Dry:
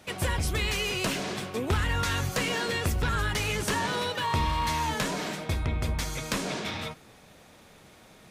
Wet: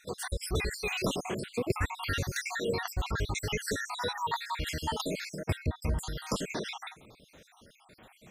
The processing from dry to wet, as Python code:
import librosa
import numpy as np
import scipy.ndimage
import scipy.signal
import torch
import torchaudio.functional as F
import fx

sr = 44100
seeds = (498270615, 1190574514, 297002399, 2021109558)

y = fx.spec_dropout(x, sr, seeds[0], share_pct=68)
y = fx.dynamic_eq(y, sr, hz=460.0, q=1.6, threshold_db=-44.0, ratio=4.0, max_db=3)